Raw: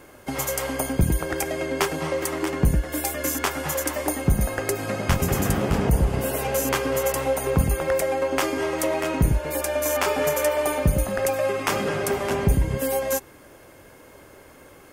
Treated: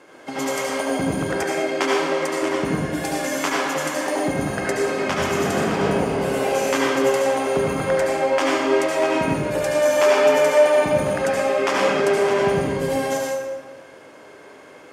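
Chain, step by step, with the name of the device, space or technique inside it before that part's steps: supermarket ceiling speaker (BPF 260–6400 Hz; reverb RT60 1.2 s, pre-delay 67 ms, DRR -3.5 dB); 1.43–2.42 HPF 170 Hz 12 dB/oct

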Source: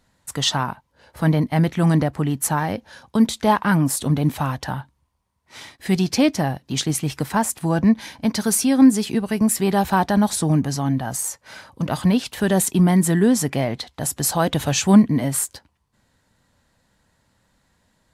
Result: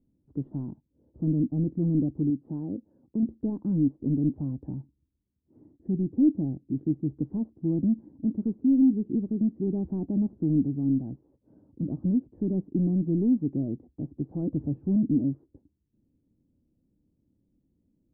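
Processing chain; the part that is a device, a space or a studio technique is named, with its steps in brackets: overdriven synthesiser ladder filter (soft clip -16.5 dBFS, distortion -10 dB; ladder low-pass 350 Hz, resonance 60%); 2.3–3.23 low shelf 110 Hz -11.5 dB; gain +3 dB

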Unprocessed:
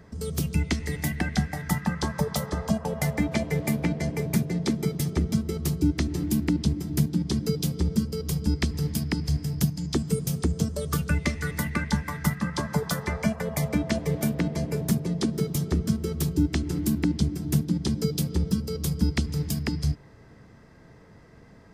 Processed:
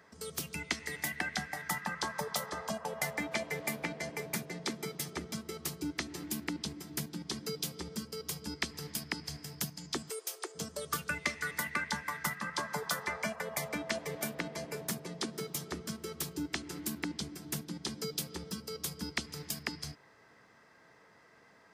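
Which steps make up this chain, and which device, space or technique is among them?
10.1–10.55 elliptic high-pass 360 Hz, stop band 40 dB; filter by subtraction (in parallel: LPF 1300 Hz 12 dB/oct + phase invert); on the sum: gain -3.5 dB

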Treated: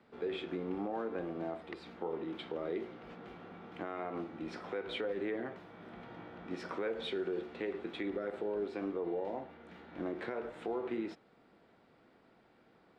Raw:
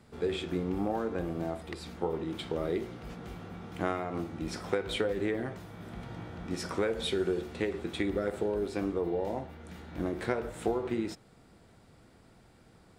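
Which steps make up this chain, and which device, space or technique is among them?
DJ mixer with the lows and highs turned down (three-band isolator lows -17 dB, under 200 Hz, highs -22 dB, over 3900 Hz; limiter -25 dBFS, peak gain reduction 9.5 dB); gain -3 dB

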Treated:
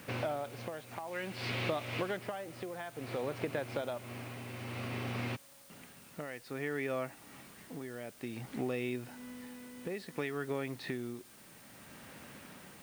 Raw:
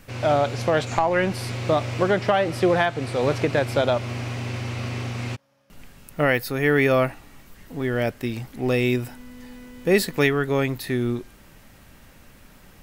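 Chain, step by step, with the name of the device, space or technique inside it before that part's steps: medium wave at night (BPF 150–3800 Hz; compressor 6:1, threshold -35 dBFS, peak gain reduction 20 dB; tremolo 0.57 Hz, depth 61%; whine 9000 Hz -67 dBFS; white noise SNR 19 dB); 1.06–2.17 dynamic EQ 3000 Hz, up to +7 dB, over -59 dBFS, Q 0.81; gain +1.5 dB

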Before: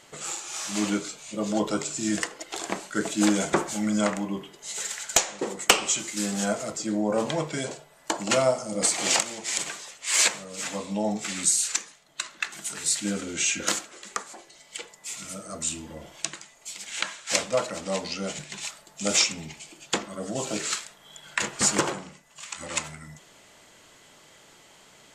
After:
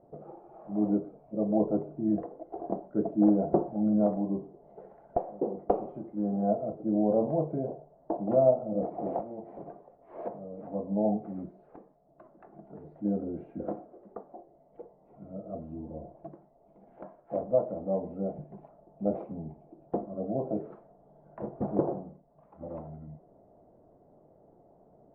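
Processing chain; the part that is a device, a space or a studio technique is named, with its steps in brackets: under water (LPF 640 Hz 24 dB/oct; bell 710 Hz +8 dB 0.28 oct)

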